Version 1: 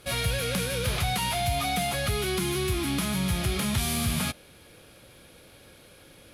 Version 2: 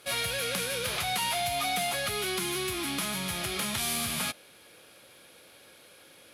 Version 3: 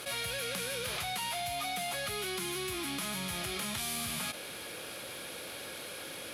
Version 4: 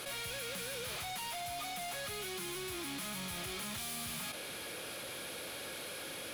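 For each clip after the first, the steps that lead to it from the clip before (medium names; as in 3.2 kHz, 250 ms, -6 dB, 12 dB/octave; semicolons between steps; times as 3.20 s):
high-pass 520 Hz 6 dB/octave
level flattener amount 70%; trim -7 dB
hard clipper -39 dBFS, distortion -7 dB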